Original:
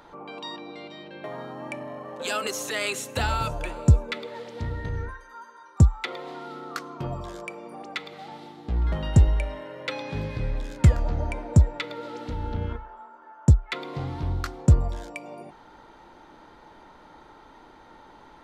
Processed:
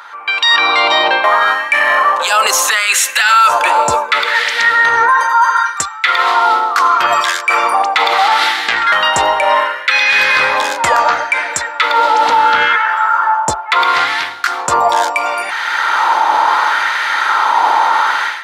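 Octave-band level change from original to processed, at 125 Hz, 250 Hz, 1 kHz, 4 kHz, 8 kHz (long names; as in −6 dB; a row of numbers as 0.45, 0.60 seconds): below −15 dB, −2.0 dB, +27.5 dB, +22.5 dB, +20.0 dB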